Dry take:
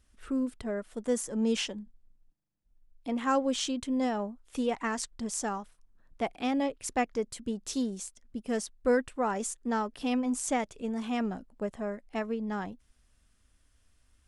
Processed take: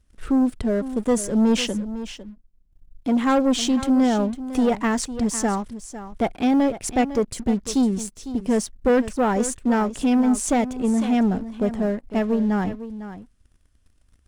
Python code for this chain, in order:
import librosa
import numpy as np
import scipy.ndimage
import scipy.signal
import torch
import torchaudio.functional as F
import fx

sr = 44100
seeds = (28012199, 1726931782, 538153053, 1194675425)

y = fx.low_shelf(x, sr, hz=420.0, db=9.0)
y = fx.leveller(y, sr, passes=2)
y = y + 10.0 ** (-13.0 / 20.0) * np.pad(y, (int(503 * sr / 1000.0), 0))[:len(y)]